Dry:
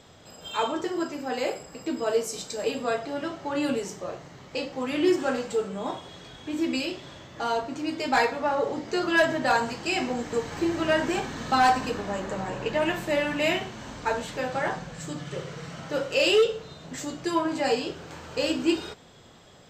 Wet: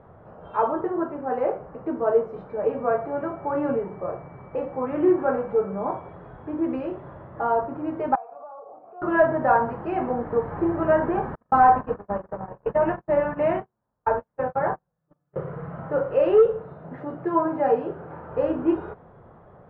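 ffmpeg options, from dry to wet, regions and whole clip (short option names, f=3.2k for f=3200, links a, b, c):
-filter_complex "[0:a]asettb=1/sr,asplit=3[a][b][c];[a]atrim=end=2.494[d];[b]atrim=start=2.49:end=6.13,asetpts=PTS-STARTPTS,afade=t=in:d=0.004:c=qsin,afade=t=out:st=3.636:d=0.004:c=qsin,aeval=exprs='val(0)+0.00501*sin(2*PI*2300*n/s)':c=same,acrossover=split=3700[e][f];[f]acompressor=threshold=-45dB:ratio=4:attack=1:release=60[g];[e][g]amix=inputs=2:normalize=0[h];[c]atrim=start=6.126[i];[d][h]acrossfade=d=0.004:c1=hsin:c2=qsin[j];[j][i]acrossfade=d=0.004:c1=qsin:c2=hsin,asettb=1/sr,asplit=3[k][l][m];[k]atrim=end=8.154[n];[l]atrim=start=8.15:end=9.02,asetpts=PTS-STARTPTS,afade=t=in:d=0.004:c=qsin,afade=t=out:st=0.866:d=0.004:c=qsin,equalizer=f=7.2k:w=0.63:g=-12,acompressor=threshold=-33dB:ratio=5:attack=3.2:release=140:knee=1:detection=peak,asplit=3[o][p][q];[o]bandpass=f=730:t=q:w=8,volume=0dB[r];[p]bandpass=f=1.09k:t=q:w=8,volume=-6dB[s];[q]bandpass=f=2.44k:t=q:w=8,volume=-9dB[t];[r][s][t]amix=inputs=3:normalize=0[u];[m]atrim=start=9.016[v];[n][u]acrossfade=d=0.004:c1=hsin:c2=qsin[w];[w][v]acrossfade=d=0.004:c1=qsin:c2=hsin,asettb=1/sr,asplit=3[x][y][z];[x]atrim=end=11.354[aa];[y]atrim=start=11.35:end=15.36,asetpts=PTS-STARTPTS,afade=t=in:d=0.004:c=qsin,afade=t=out:st=4.006:d=0.004:c=qsin,bandreject=f=60:t=h:w=6,bandreject=f=120:t=h:w=6,bandreject=f=180:t=h:w=6,bandreject=f=240:t=h:w=6,bandreject=f=300:t=h:w=6,bandreject=f=360:t=h:w=6,bandreject=f=420:t=h:w=6,agate=range=-43dB:threshold=-31dB:ratio=16:release=100:detection=peak[ab];[z]atrim=start=15.356[ac];[aa][ab]acrossfade=d=0.004:c1=hsin:c2=qsin[ad];[ad][ac]acrossfade=d=0.004:c1=qsin:c2=hsin,asettb=1/sr,asplit=3[ae][af][ag];[ae]atrim=end=16.604[ah];[af]atrim=start=16.6:end=18.32,asetpts=PTS-STARTPTS,afade=t=in:d=0.004:c=qsin,afade=t=out:st=1.716:d=0.004:c=qsin,highpass=110,bandreject=f=1.1k:w=15[ai];[ag]atrim=start=18.316[aj];[ah][ai]acrossfade=d=0.004:c1=hsin:c2=qsin[ak];[ak][aj]acrossfade=d=0.004:c1=qsin:c2=hsin,lowpass=f=1.3k:w=0.5412,lowpass=f=1.3k:w=1.3066,equalizer=f=270:t=o:w=0.6:g=-6.5,volume=5.5dB"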